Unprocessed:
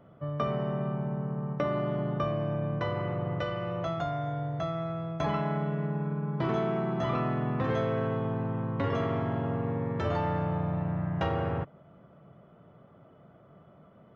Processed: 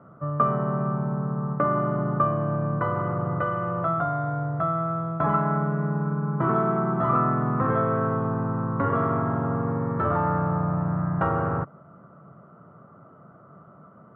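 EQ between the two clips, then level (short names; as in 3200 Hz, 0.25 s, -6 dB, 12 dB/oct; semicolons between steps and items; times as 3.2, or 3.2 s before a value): HPF 140 Hz 12 dB/oct; synth low-pass 1300 Hz, resonance Q 4.6; low shelf 240 Hz +11 dB; 0.0 dB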